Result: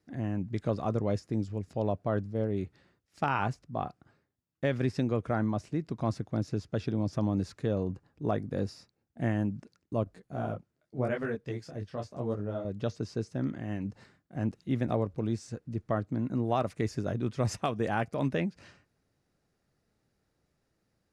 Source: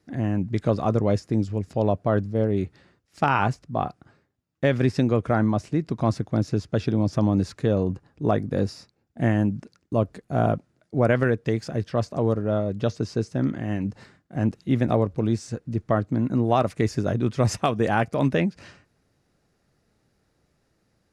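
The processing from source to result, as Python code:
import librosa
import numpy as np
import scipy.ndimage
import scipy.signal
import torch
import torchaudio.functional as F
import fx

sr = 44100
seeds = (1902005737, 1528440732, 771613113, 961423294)

y = fx.detune_double(x, sr, cents=29, at=(10.04, 12.65))
y = y * librosa.db_to_amplitude(-8.0)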